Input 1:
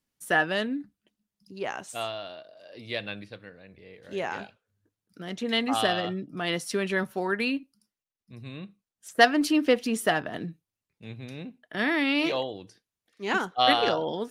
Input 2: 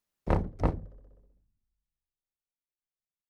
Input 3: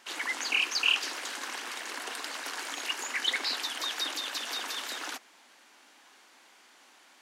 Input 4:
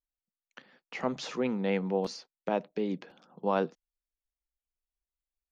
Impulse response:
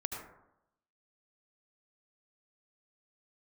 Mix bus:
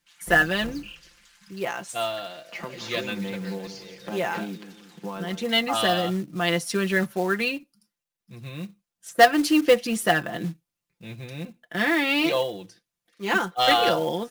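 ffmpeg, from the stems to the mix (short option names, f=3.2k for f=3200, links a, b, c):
-filter_complex "[0:a]equalizer=f=350:t=o:w=0.21:g=-3,asoftclip=type=tanh:threshold=-8.5dB,volume=2dB[a];[1:a]asoftclip=type=hard:threshold=-26.5dB,volume=-10dB,asplit=2[b][c];[c]volume=-11dB[d];[2:a]highpass=1.5k,volume=-20dB[e];[3:a]acompressor=threshold=-34dB:ratio=3,equalizer=f=600:t=o:w=0.77:g=-7,adelay=1600,volume=1.5dB,asplit=2[f][g];[g]volume=-11dB[h];[4:a]atrim=start_sample=2205[i];[d][i]afir=irnorm=-1:irlink=0[j];[h]aecho=0:1:175|350|525|700|875|1050:1|0.43|0.185|0.0795|0.0342|0.0147[k];[a][b][e][f][j][k]amix=inputs=6:normalize=0,aecho=1:1:5.8:0.75,acrusher=bits=5:mode=log:mix=0:aa=0.000001"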